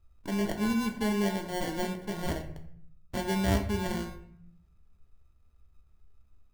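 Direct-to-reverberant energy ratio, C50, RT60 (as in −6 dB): 4.0 dB, 10.5 dB, 0.65 s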